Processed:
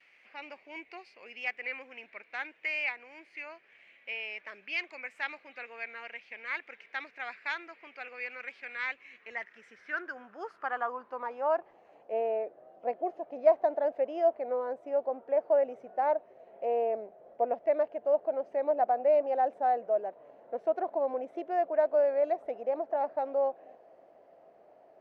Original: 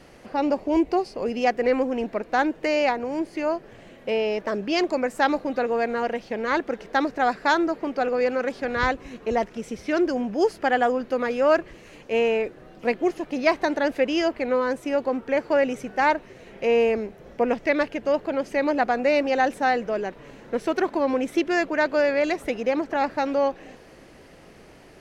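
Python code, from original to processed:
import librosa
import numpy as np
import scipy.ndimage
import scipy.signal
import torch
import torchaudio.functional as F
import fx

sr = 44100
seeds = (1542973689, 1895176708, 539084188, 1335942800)

y = fx.vibrato(x, sr, rate_hz=0.8, depth_cents=30.0)
y = fx.filter_sweep_bandpass(y, sr, from_hz=2300.0, to_hz=660.0, start_s=9.01, end_s=12.15, q=5.2)
y = y * librosa.db_to_amplitude(1.0)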